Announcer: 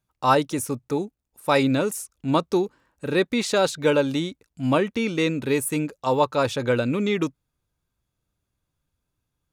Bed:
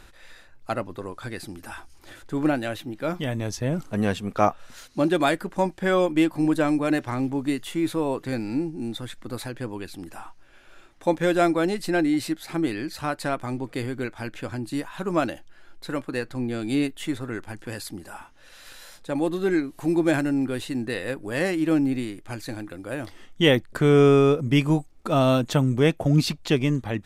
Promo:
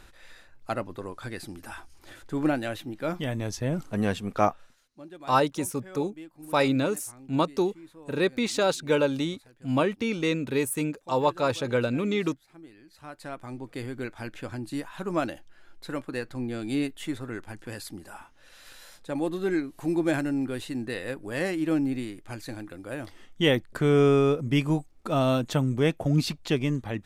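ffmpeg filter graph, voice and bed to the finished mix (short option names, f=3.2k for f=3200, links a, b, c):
-filter_complex "[0:a]adelay=5050,volume=-3.5dB[a];[1:a]volume=17dB,afade=t=out:st=4.45:d=0.31:silence=0.0891251,afade=t=in:st=12.85:d=1.26:silence=0.105925[b];[a][b]amix=inputs=2:normalize=0"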